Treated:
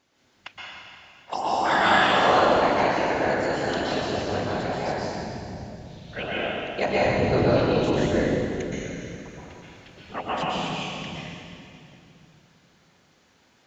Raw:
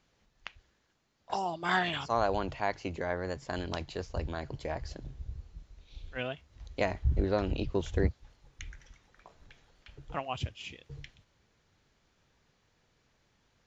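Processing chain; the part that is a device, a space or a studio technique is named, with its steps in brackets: whispering ghost (whisperiser; HPF 230 Hz 6 dB/oct; reverb RT60 2.8 s, pre-delay 0.114 s, DRR -7 dB); gain +4 dB

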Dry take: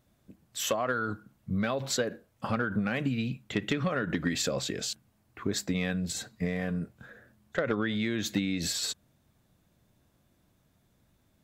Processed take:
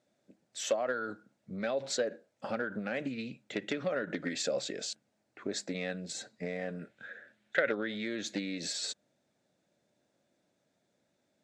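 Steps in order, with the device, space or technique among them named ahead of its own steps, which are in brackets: full-range speaker at full volume (Doppler distortion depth 0.12 ms; speaker cabinet 260–8200 Hz, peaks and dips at 570 Hz +6 dB, 1100 Hz -9 dB, 3000 Hz -4 dB); 6.79–7.71 band shelf 2300 Hz +10 dB; gain -3.5 dB

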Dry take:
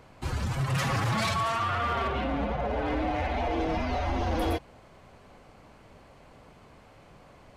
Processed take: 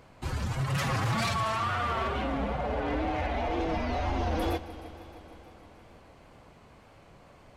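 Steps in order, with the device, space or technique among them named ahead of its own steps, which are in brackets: multi-head tape echo (multi-head echo 0.155 s, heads first and second, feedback 67%, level -19 dB; wow and flutter); gain -1.5 dB

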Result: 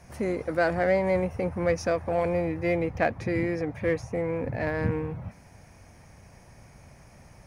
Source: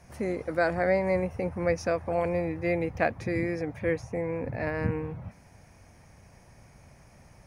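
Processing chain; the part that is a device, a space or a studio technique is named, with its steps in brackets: parallel distortion (in parallel at -8.5 dB: hard clip -28.5 dBFS, distortion -7 dB); 2.76–3.79 on the sum: high shelf 6500 Hz -5.5 dB

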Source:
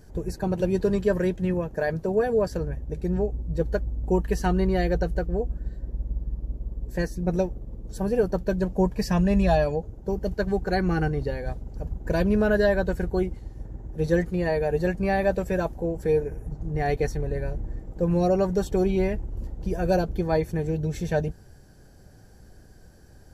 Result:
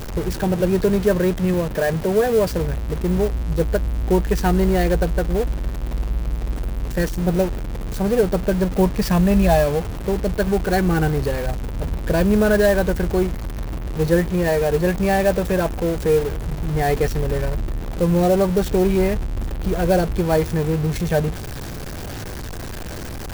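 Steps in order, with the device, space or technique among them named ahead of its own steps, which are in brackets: early CD player with a faulty converter (zero-crossing step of -29 dBFS; clock jitter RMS 0.025 ms); gain +4 dB

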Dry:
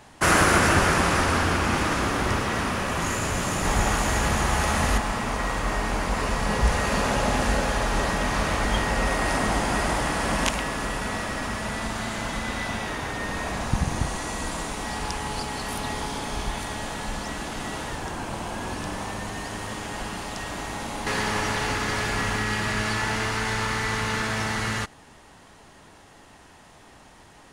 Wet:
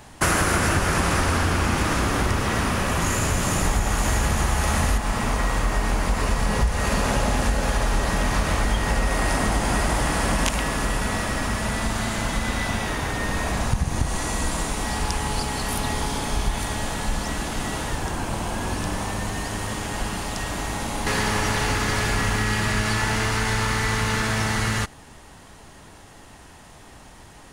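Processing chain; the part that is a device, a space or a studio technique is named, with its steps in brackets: ASMR close-microphone chain (low shelf 130 Hz +7.5 dB; compressor, threshold -20 dBFS, peak gain reduction 10 dB; high shelf 8500 Hz +7.5 dB); gain +2.5 dB

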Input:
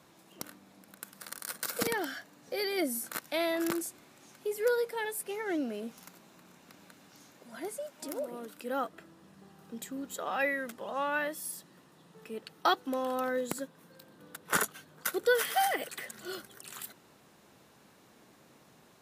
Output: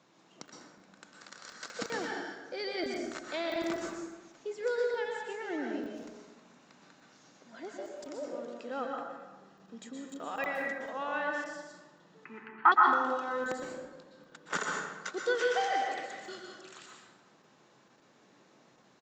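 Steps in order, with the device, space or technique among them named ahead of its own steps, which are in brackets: call with lost packets (HPF 140 Hz 12 dB/oct; downsampling 16000 Hz; packet loss packets of 20 ms random); 12.25–12.72 EQ curve 370 Hz 0 dB, 550 Hz -23 dB, 880 Hz +11 dB, 2100 Hz +12 dB, 4100 Hz -26 dB; plate-style reverb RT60 1.2 s, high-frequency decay 0.55×, pre-delay 0.105 s, DRR 0 dB; gain -4.5 dB

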